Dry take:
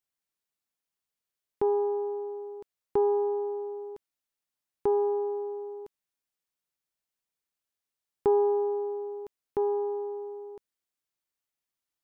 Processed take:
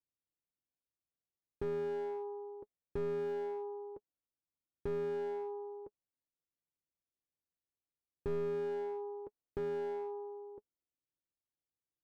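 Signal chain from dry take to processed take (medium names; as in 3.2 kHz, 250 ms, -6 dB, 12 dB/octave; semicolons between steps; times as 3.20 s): comb of notches 210 Hz; level-controlled noise filter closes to 450 Hz, open at -29.5 dBFS; slew-rate limiter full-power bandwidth 7.9 Hz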